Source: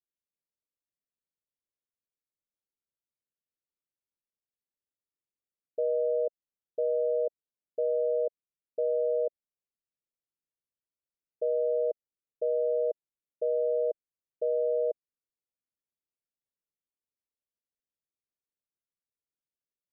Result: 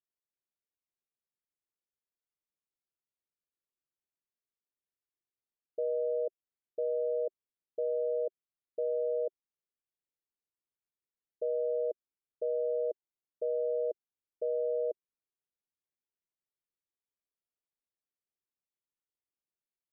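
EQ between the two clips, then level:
high-frequency loss of the air 350 metres
parametric band 380 Hz +5 dB 0.4 octaves
−4.0 dB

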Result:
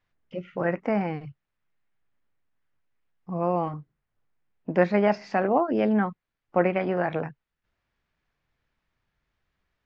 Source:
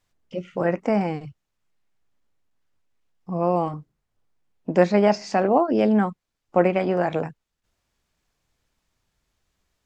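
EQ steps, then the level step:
high-frequency loss of the air 180 metres
parametric band 140 Hz +3 dB 0.39 octaves
parametric band 1,800 Hz +6 dB 1.3 octaves
−4.0 dB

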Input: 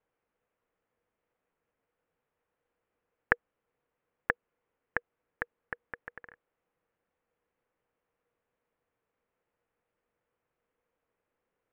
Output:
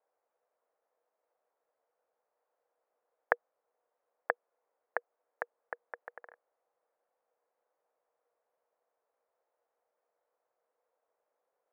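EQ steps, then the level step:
four-pole ladder band-pass 750 Hz, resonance 45%
+12.5 dB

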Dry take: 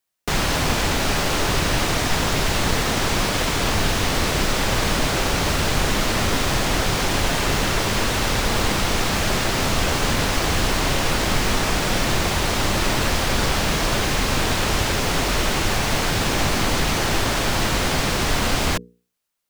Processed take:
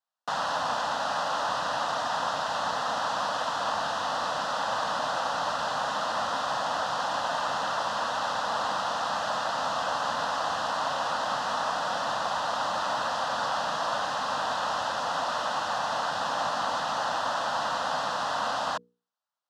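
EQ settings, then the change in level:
band-pass filter 480–3,100 Hz
phaser with its sweep stopped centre 930 Hz, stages 4
0.0 dB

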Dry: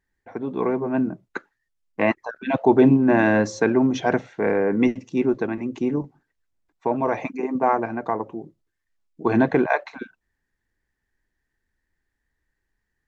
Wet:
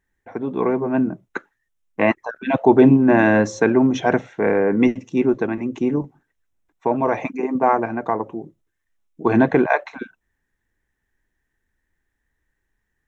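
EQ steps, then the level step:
parametric band 4,600 Hz −10.5 dB 0.24 octaves
+3.0 dB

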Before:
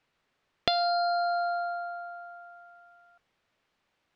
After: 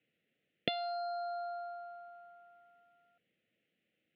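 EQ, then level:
Butterworth band-reject 1,000 Hz, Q 0.56
high-frequency loss of the air 230 metres
loudspeaker in its box 250–2,700 Hz, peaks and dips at 270 Hz −6 dB, 390 Hz −10 dB, 610 Hz −4 dB, 1,100 Hz −3 dB, 1,600 Hz −7 dB, 2,300 Hz −6 dB
+8.5 dB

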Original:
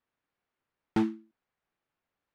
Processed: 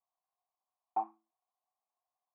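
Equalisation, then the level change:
high-pass filter 460 Hz 12 dB per octave
dynamic equaliser 800 Hz, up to +7 dB, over −51 dBFS, Q 2.7
formant resonators in series a
+7.0 dB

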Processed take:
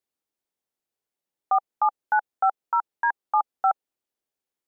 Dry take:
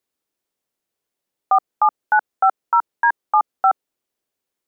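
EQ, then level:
parametric band 810 Hz +3.5 dB 0.22 octaves
−7.5 dB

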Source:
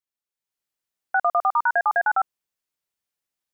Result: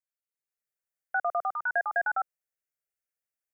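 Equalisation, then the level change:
low-shelf EQ 110 Hz −4 dB
phaser with its sweep stopped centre 990 Hz, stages 6
−5.0 dB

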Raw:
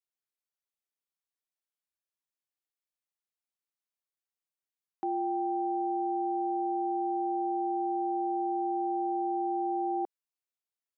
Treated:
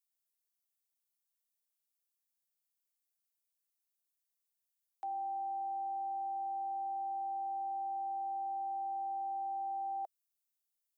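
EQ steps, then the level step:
high-pass with resonance 660 Hz, resonance Q 4.9
first difference
+4.5 dB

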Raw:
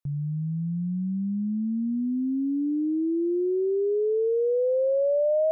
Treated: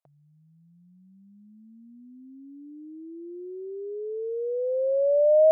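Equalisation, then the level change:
high-pass with resonance 670 Hz, resonance Q 4.9
−5.5 dB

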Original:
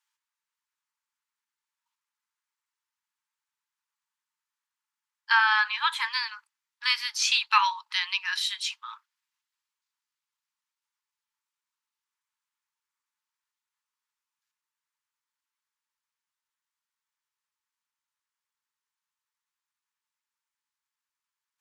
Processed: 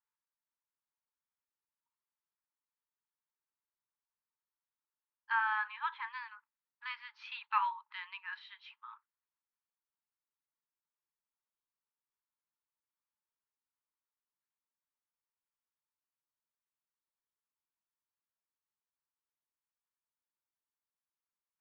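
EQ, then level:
high-frequency loss of the air 290 metres
head-to-tape spacing loss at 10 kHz 41 dB
−3.0 dB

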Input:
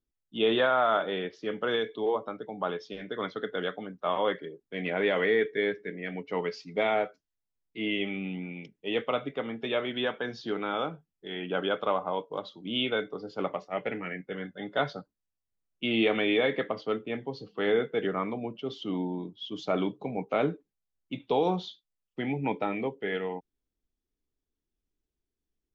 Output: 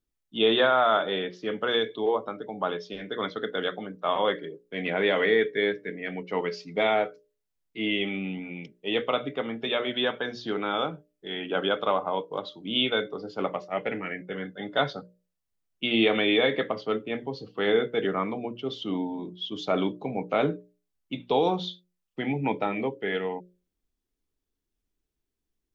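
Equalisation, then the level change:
mains-hum notches 60/120/180/240/300/360/420/480/540/600 Hz
dynamic equaliser 3,600 Hz, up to +5 dB, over −51 dBFS, Q 6
+3.0 dB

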